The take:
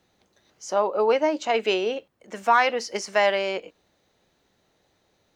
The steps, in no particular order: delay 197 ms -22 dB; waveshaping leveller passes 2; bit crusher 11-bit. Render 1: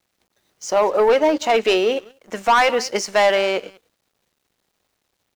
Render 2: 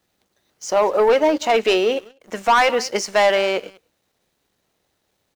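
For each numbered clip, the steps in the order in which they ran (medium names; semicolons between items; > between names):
delay > waveshaping leveller > bit crusher; bit crusher > delay > waveshaping leveller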